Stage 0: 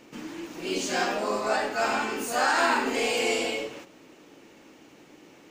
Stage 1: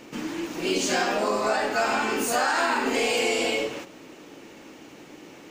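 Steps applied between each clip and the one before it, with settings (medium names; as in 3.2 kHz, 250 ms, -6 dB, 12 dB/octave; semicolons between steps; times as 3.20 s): compression, threshold -27 dBFS, peak gain reduction 8 dB; trim +6.5 dB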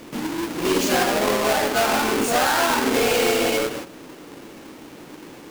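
square wave that keeps the level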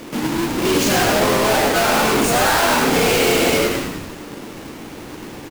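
saturation -20 dBFS, distortion -15 dB; frequency-shifting echo 103 ms, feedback 56%, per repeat -86 Hz, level -6 dB; trim +6 dB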